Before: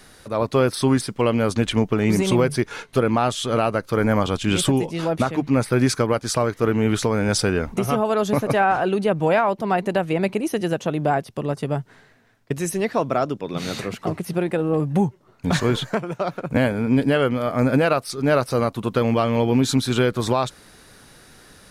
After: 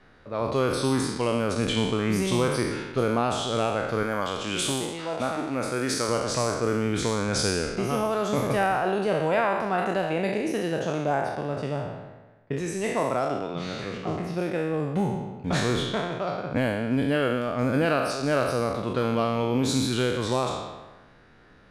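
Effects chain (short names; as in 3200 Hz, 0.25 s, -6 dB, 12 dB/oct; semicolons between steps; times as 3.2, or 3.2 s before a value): spectral trails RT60 1.23 s; low-pass opened by the level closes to 2200 Hz, open at -12 dBFS; 4.03–6.09 low shelf 260 Hz -10.5 dB; gain -7.5 dB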